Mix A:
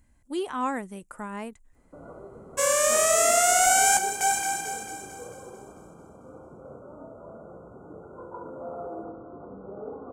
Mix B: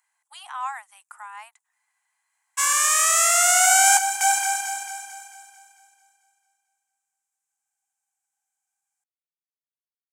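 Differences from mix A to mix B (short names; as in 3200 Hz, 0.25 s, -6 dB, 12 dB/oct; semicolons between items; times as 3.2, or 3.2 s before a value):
first sound: muted; second sound +5.0 dB; master: add steep high-pass 760 Hz 72 dB/oct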